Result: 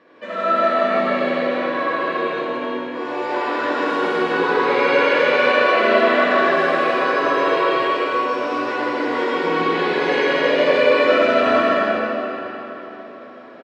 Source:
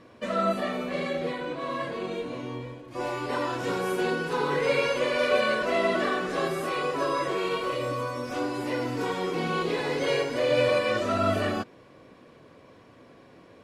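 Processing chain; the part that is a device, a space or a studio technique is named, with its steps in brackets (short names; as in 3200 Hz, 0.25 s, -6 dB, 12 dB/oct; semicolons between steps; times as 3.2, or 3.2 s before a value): station announcement (BPF 330–3600 Hz; bell 1700 Hz +5 dB 0.26 oct; loudspeakers at several distances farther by 54 m -1 dB, 87 m -9 dB; reverb RT60 3.9 s, pre-delay 47 ms, DRR -7 dB)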